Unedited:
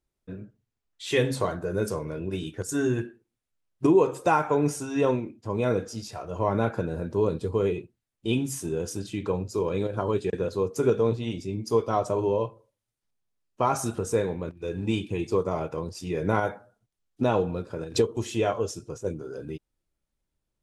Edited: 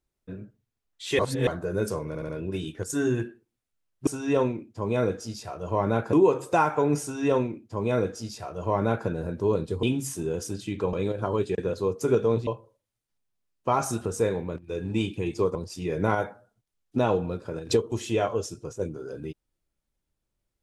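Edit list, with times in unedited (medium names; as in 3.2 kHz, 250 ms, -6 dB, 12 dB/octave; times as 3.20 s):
1.19–1.47 s: reverse
2.08 s: stutter 0.07 s, 4 plays
4.75–6.81 s: copy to 3.86 s
7.56–8.29 s: delete
9.39–9.68 s: delete
11.22–12.40 s: delete
15.48–15.80 s: delete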